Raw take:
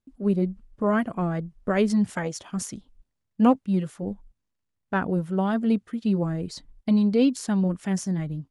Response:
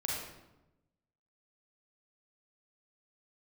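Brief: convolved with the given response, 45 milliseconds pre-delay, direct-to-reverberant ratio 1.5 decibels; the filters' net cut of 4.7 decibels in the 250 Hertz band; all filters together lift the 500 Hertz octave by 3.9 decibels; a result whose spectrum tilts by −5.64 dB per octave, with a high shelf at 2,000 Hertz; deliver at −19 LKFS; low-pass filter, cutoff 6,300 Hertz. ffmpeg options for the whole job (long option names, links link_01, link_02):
-filter_complex "[0:a]lowpass=6300,equalizer=frequency=250:width_type=o:gain=-7.5,equalizer=frequency=500:width_type=o:gain=6.5,highshelf=frequency=2000:gain=4,asplit=2[link_01][link_02];[1:a]atrim=start_sample=2205,adelay=45[link_03];[link_02][link_03]afir=irnorm=-1:irlink=0,volume=-5.5dB[link_04];[link_01][link_04]amix=inputs=2:normalize=0,volume=5.5dB"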